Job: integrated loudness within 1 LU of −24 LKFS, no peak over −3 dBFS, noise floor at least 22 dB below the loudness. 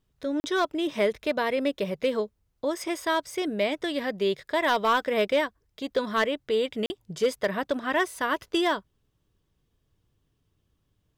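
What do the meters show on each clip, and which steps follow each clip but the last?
share of clipped samples 0.2%; peaks flattened at −16.0 dBFS; number of dropouts 2; longest dropout 40 ms; integrated loudness −27.5 LKFS; sample peak −16.0 dBFS; target loudness −24.0 LKFS
→ clipped peaks rebuilt −16 dBFS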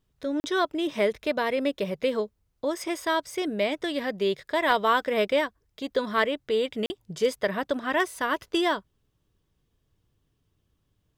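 share of clipped samples 0.0%; number of dropouts 2; longest dropout 40 ms
→ repair the gap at 0:00.40/0:06.86, 40 ms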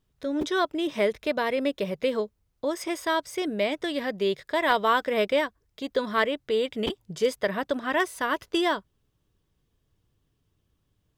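number of dropouts 0; integrated loudness −27.0 LKFS; sample peak −8.0 dBFS; target loudness −24.0 LKFS
→ level +3 dB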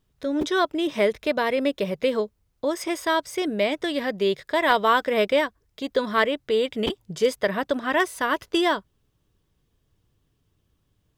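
integrated loudness −24.0 LKFS; sample peak −5.0 dBFS; background noise floor −71 dBFS

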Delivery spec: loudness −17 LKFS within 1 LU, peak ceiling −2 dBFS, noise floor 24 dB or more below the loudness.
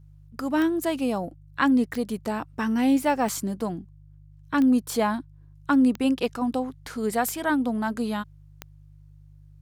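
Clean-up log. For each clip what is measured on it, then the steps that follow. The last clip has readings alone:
number of clicks 7; mains hum 50 Hz; hum harmonics up to 150 Hz; level of the hum −48 dBFS; integrated loudness −25.5 LKFS; sample peak −9.0 dBFS; target loudness −17.0 LKFS
→ click removal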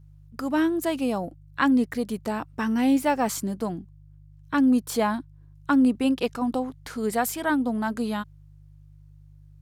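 number of clicks 0; mains hum 50 Hz; hum harmonics up to 150 Hz; level of the hum −48 dBFS
→ hum removal 50 Hz, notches 3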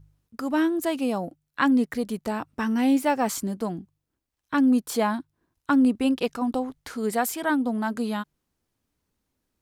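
mains hum none found; integrated loudness −25.5 LKFS; sample peak −9.0 dBFS; target loudness −17.0 LKFS
→ level +8.5 dB
brickwall limiter −2 dBFS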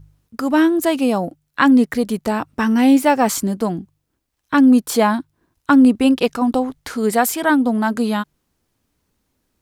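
integrated loudness −17.0 LKFS; sample peak −2.0 dBFS; background noise floor −72 dBFS

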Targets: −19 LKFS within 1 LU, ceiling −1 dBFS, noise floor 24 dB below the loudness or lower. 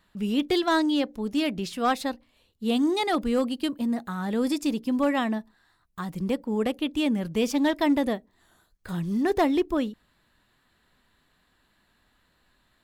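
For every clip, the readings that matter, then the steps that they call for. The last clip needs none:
share of clipped samples 0.3%; peaks flattened at −16.0 dBFS; integrated loudness −26.5 LKFS; sample peak −16.0 dBFS; target loudness −19.0 LKFS
→ clipped peaks rebuilt −16 dBFS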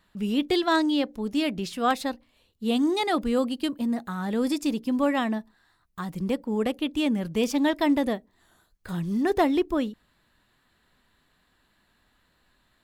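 share of clipped samples 0.0%; integrated loudness −26.5 LKFS; sample peak −9.5 dBFS; target loudness −19.0 LKFS
→ level +7.5 dB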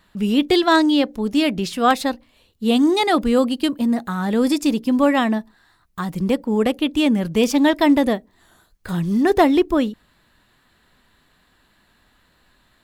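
integrated loudness −19.0 LKFS; sample peak −2.0 dBFS; background noise floor −61 dBFS

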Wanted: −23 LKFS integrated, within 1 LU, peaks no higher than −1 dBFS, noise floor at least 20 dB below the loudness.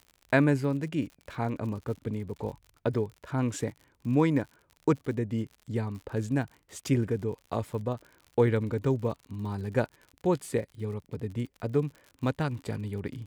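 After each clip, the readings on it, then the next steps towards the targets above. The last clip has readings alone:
crackle rate 61 per second; integrated loudness −31.0 LKFS; sample peak −10.5 dBFS; target loudness −23.0 LKFS
→ click removal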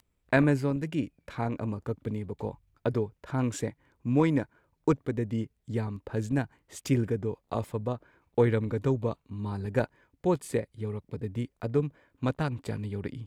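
crackle rate 0.83 per second; integrated loudness −31.0 LKFS; sample peak −10.5 dBFS; target loudness −23.0 LKFS
→ level +8 dB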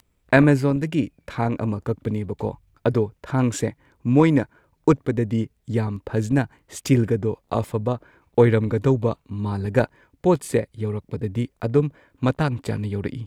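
integrated loudness −23.0 LKFS; sample peak −2.5 dBFS; background noise floor −68 dBFS

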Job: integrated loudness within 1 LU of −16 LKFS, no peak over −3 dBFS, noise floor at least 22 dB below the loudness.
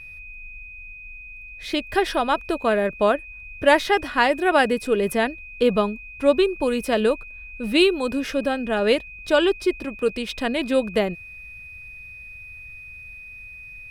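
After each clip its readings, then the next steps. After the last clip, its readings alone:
interfering tone 2,500 Hz; level of the tone −38 dBFS; integrated loudness −22.0 LKFS; sample peak −4.0 dBFS; target loudness −16.0 LKFS
→ notch filter 2,500 Hz, Q 30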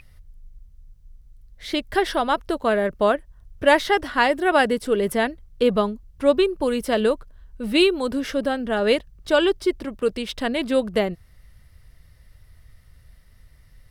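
interfering tone none found; integrated loudness −22.0 LKFS; sample peak −4.0 dBFS; target loudness −16.0 LKFS
→ level +6 dB
brickwall limiter −3 dBFS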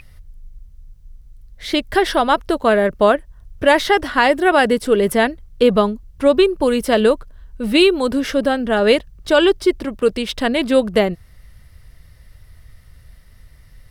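integrated loudness −16.5 LKFS; sample peak −3.0 dBFS; background noise floor −46 dBFS

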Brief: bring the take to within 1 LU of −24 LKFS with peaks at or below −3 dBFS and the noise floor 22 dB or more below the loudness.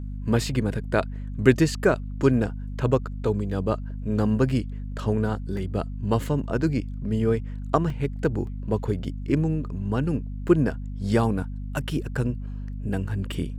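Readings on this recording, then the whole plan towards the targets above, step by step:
number of dropouts 4; longest dropout 2.4 ms; mains hum 50 Hz; hum harmonics up to 250 Hz; level of the hum −30 dBFS; integrated loudness −26.0 LKFS; sample peak −3.5 dBFS; target loudness −24.0 LKFS
→ repair the gap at 0:05.57/0:07.90/0:08.47/0:10.48, 2.4 ms
mains-hum notches 50/100/150/200/250 Hz
level +2 dB
brickwall limiter −3 dBFS

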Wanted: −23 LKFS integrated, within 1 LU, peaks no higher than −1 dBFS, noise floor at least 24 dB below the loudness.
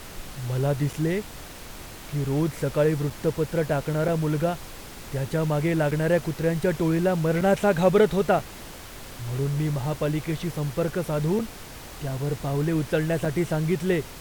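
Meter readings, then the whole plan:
number of dropouts 8; longest dropout 4.7 ms; background noise floor −41 dBFS; target noise floor −50 dBFS; integrated loudness −25.5 LKFS; sample peak −7.5 dBFS; target loudness −23.0 LKFS
→ repair the gap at 0:00.93/0:03.10/0:04.08/0:05.91/0:07.41/0:08.39/0:11.39/0:13.25, 4.7 ms
noise reduction from a noise print 9 dB
level +2.5 dB

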